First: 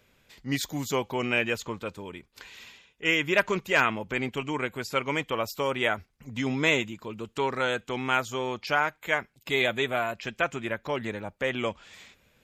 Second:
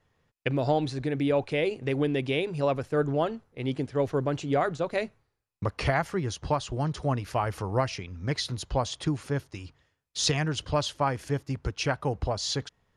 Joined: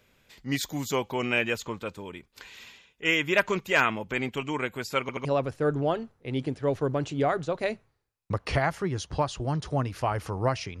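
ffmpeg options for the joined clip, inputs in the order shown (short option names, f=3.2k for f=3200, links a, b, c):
-filter_complex "[0:a]apad=whole_dur=10.8,atrim=end=10.8,asplit=3[a][b][c];[a]atrim=end=5.092[d];[b]atrim=start=5.008:end=5.092[e];[c]atrim=start=5.008:end=5.092[f];[1:a]atrim=start=2.568:end=8.12[g];[d][e]acrossfade=d=0.004:c1=hsin:c2=hsin[h];[h][f]acrossfade=d=0.004:c1=hsin:c2=hsin[i];[i][g]acrossfade=d=0.004:c1=hsin:c2=hsin"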